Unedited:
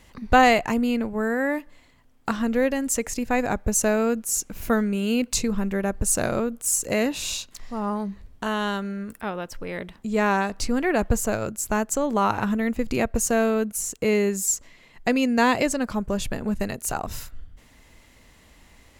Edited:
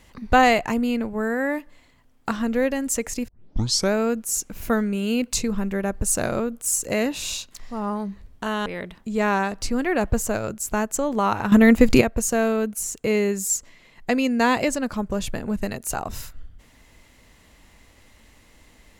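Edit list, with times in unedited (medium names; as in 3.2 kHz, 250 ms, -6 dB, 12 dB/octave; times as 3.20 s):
3.28 s: tape start 0.65 s
8.66–9.64 s: delete
12.50–12.99 s: gain +11 dB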